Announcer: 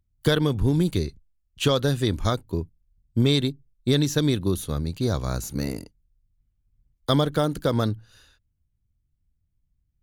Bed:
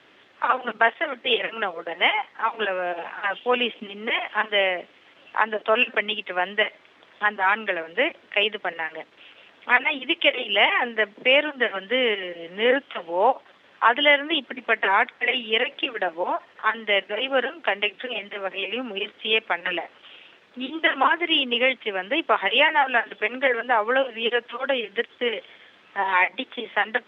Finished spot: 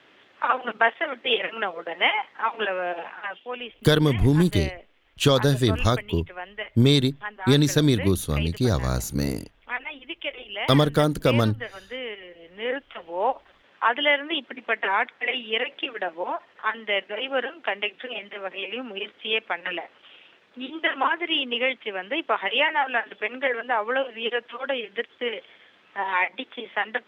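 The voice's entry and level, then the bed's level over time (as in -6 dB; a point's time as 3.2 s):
3.60 s, +2.5 dB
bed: 2.98 s -1 dB
3.51 s -12 dB
12.17 s -12 dB
13.42 s -3.5 dB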